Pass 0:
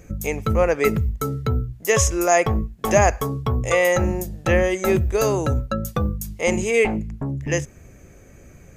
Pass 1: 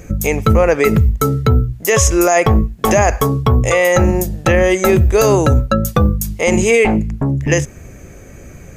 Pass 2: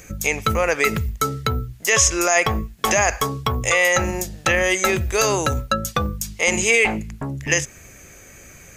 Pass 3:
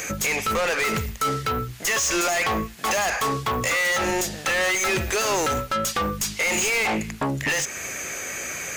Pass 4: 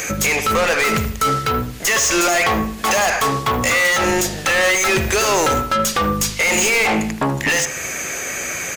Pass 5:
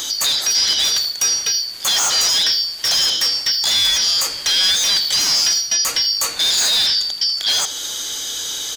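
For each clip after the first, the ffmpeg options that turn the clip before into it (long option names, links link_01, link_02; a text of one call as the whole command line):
ffmpeg -i in.wav -af "alimiter=level_in=11.5dB:limit=-1dB:release=50:level=0:latency=1,volume=-1.5dB" out.wav
ffmpeg -i in.wav -filter_complex "[0:a]tiltshelf=frequency=970:gain=-8,acrossover=split=7500[link_01][link_02];[link_02]acompressor=threshold=-29dB:ratio=6[link_03];[link_01][link_03]amix=inputs=2:normalize=0,volume=-4.5dB" out.wav
ffmpeg -i in.wav -filter_complex "[0:a]asplit=2[link_01][link_02];[link_02]highpass=frequency=720:poles=1,volume=31dB,asoftclip=type=tanh:threshold=-2.5dB[link_03];[link_01][link_03]amix=inputs=2:normalize=0,lowpass=frequency=6800:poles=1,volume=-6dB,alimiter=limit=-9.5dB:level=0:latency=1:release=310,volume=-8.5dB" out.wav
ffmpeg -i in.wav -filter_complex "[0:a]asplit=2[link_01][link_02];[link_02]adelay=78,lowpass=frequency=1400:poles=1,volume=-7.5dB,asplit=2[link_03][link_04];[link_04]adelay=78,lowpass=frequency=1400:poles=1,volume=0.41,asplit=2[link_05][link_06];[link_06]adelay=78,lowpass=frequency=1400:poles=1,volume=0.41,asplit=2[link_07][link_08];[link_08]adelay=78,lowpass=frequency=1400:poles=1,volume=0.41,asplit=2[link_09][link_10];[link_10]adelay=78,lowpass=frequency=1400:poles=1,volume=0.41[link_11];[link_01][link_03][link_05][link_07][link_09][link_11]amix=inputs=6:normalize=0,volume=6dB" out.wav
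ffmpeg -i in.wav -filter_complex "[0:a]afftfilt=real='real(if(lt(b,272),68*(eq(floor(b/68),0)*3+eq(floor(b/68),1)*2+eq(floor(b/68),2)*1+eq(floor(b/68),3)*0)+mod(b,68),b),0)':imag='imag(if(lt(b,272),68*(eq(floor(b/68),0)*3+eq(floor(b/68),1)*2+eq(floor(b/68),2)*1+eq(floor(b/68),3)*0)+mod(b,68),b),0)':win_size=2048:overlap=0.75,acrossover=split=640|2400[link_01][link_02][link_03];[link_01]asoftclip=type=tanh:threshold=-38.5dB[link_04];[link_04][link_02][link_03]amix=inputs=3:normalize=0" out.wav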